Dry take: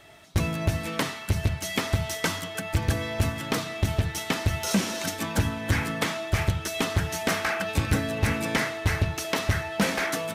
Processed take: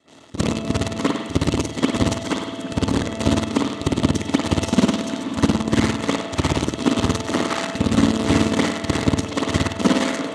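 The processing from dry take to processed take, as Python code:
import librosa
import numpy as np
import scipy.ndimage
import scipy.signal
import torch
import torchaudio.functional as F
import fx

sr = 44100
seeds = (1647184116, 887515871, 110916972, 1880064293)

p1 = fx.local_reverse(x, sr, ms=34.0)
p2 = fx.rev_spring(p1, sr, rt60_s=1.0, pass_ms=(54,), chirp_ms=45, drr_db=-8.0)
p3 = fx.quant_companded(p2, sr, bits=2)
p4 = p2 + (p3 * librosa.db_to_amplitude(-5.5))
p5 = fx.hpss(p4, sr, part='harmonic', gain_db=-8)
p6 = fx.cabinet(p5, sr, low_hz=110.0, low_slope=12, high_hz=8100.0, hz=(120.0, 270.0, 740.0, 1600.0, 2400.0, 5200.0), db=(-4, 10, -5, -10, -8, -5))
p7 = p6 + fx.echo_single(p6, sr, ms=99, db=-13.0, dry=0)
y = p7 * librosa.db_to_amplitude(-3.5)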